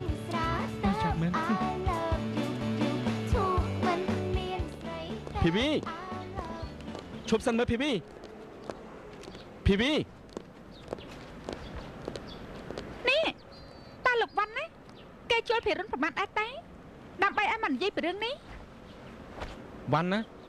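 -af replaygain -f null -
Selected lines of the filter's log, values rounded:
track_gain = +10.9 dB
track_peak = 0.165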